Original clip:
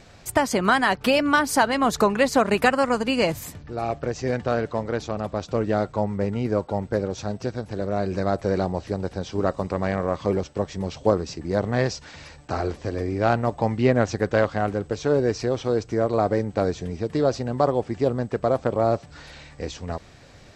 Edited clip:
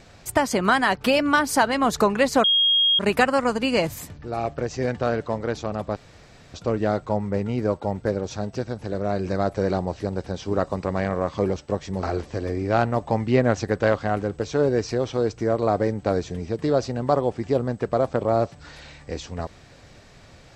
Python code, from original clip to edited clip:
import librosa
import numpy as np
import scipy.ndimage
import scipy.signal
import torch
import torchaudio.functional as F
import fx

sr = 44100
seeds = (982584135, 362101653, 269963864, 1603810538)

y = fx.edit(x, sr, fx.insert_tone(at_s=2.44, length_s=0.55, hz=3260.0, db=-15.5),
    fx.insert_room_tone(at_s=5.41, length_s=0.58),
    fx.cut(start_s=10.9, length_s=1.64), tone=tone)